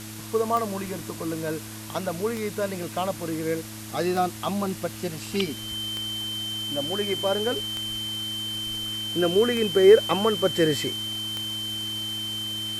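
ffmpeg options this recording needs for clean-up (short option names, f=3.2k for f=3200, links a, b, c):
-af "adeclick=t=4,bandreject=f=108.2:t=h:w=4,bandreject=f=216.4:t=h:w=4,bandreject=f=324.6:t=h:w=4,bandreject=f=3.1k:w=30,afwtdn=0.01"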